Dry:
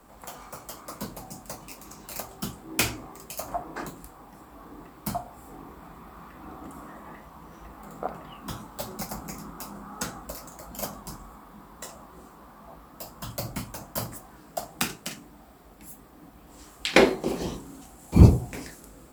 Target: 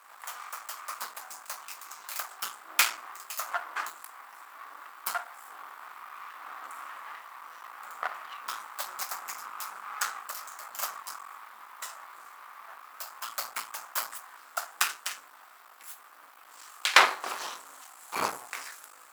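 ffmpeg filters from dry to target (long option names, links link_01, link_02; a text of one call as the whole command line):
ffmpeg -i in.wav -af "aeval=exprs='max(val(0),0)':channel_layout=same,highpass=frequency=1200:width_type=q:width=2,volume=5dB" out.wav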